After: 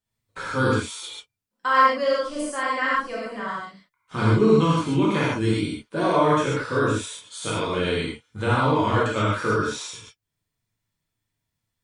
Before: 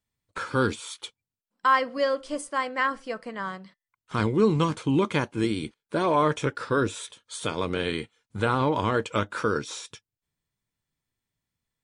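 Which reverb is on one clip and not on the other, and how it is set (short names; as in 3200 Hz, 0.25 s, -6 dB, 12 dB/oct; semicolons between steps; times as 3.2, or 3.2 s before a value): non-linear reverb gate 0.17 s flat, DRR -7.5 dB; gain -4.5 dB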